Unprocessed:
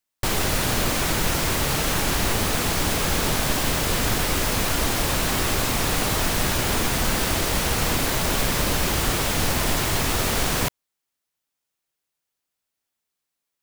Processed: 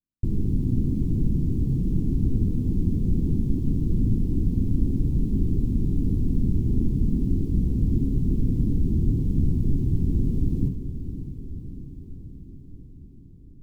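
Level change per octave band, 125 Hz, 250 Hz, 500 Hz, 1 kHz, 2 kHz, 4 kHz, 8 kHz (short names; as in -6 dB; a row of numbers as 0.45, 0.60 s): +4.5 dB, +3.0 dB, -12.0 dB, under -35 dB, under -40 dB, under -35 dB, under -35 dB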